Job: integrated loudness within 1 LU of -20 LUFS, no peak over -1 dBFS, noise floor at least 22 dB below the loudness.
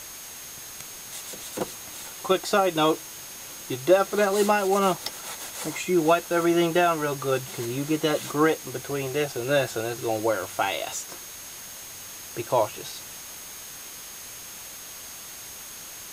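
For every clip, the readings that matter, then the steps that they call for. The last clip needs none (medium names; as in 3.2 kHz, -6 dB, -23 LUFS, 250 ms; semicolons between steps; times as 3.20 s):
steady tone 6.5 kHz; tone level -44 dBFS; noise floor -41 dBFS; noise floor target -48 dBFS; loudness -25.5 LUFS; peak level -6.5 dBFS; loudness target -20.0 LUFS
-> band-stop 6.5 kHz, Q 30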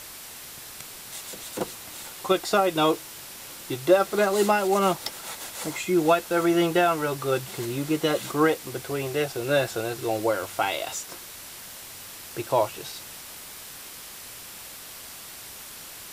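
steady tone not found; noise floor -42 dBFS; noise floor target -48 dBFS
-> noise reduction 6 dB, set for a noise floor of -42 dBFS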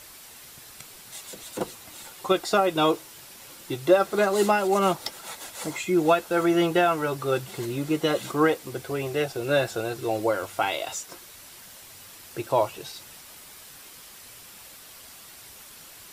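noise floor -47 dBFS; loudness -25.0 LUFS; peak level -6.5 dBFS; loudness target -20.0 LUFS
-> trim +5 dB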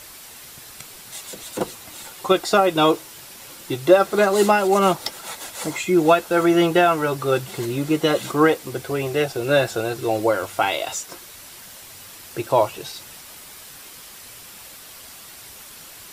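loudness -20.0 LUFS; peak level -1.5 dBFS; noise floor -42 dBFS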